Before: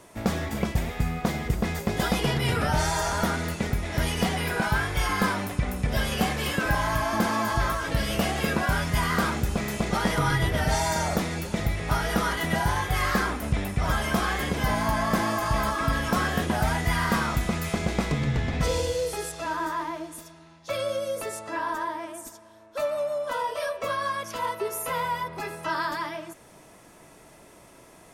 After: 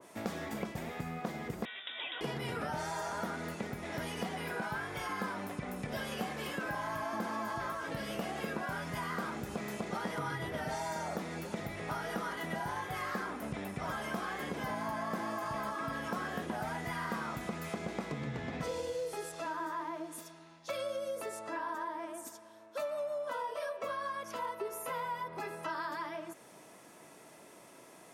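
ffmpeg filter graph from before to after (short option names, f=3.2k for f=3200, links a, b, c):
-filter_complex "[0:a]asettb=1/sr,asplit=3[a][b][c];[a]atrim=end=1.654[d];[b]atrim=start=1.65:end=2.21,asetpts=PTS-STARTPTS,afade=t=in:d=0.004:c=qsin,afade=t=out:st=0.556:d=0.004:c=qsin,highpass=510,lowpass=f=3.4k:t=q:w=0.5098,lowpass=f=3.4k:t=q:w=0.6013,lowpass=f=3.4k:t=q:w=0.9,lowpass=f=3.4k:t=q:w=2.563,afreqshift=-4000[e];[c]atrim=start=2.206[f];[d][e]acrossfade=d=0.004:c1=hsin:c2=qsin[g];[g][f]acrossfade=d=0.004:c1=qsin:c2=hsin,highpass=180,acompressor=threshold=-33dB:ratio=2.5,adynamicequalizer=threshold=0.00447:dfrequency=2100:dqfactor=0.7:tfrequency=2100:tqfactor=0.7:attack=5:release=100:ratio=0.375:range=3:mode=cutabove:tftype=highshelf,volume=-3.5dB"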